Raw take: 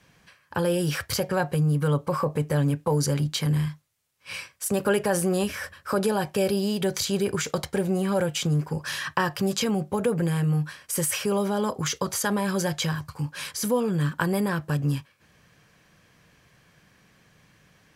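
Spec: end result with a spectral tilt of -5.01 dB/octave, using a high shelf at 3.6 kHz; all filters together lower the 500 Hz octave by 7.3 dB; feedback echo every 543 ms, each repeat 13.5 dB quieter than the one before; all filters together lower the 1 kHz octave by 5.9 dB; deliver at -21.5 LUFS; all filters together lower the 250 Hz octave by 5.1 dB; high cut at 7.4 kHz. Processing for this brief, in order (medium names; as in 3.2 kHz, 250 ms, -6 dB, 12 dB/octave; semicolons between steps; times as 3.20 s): low-pass 7.4 kHz; peaking EQ 250 Hz -7.5 dB; peaking EQ 500 Hz -5.5 dB; peaking EQ 1 kHz -5 dB; treble shelf 3.6 kHz -3 dB; feedback delay 543 ms, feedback 21%, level -13.5 dB; trim +9 dB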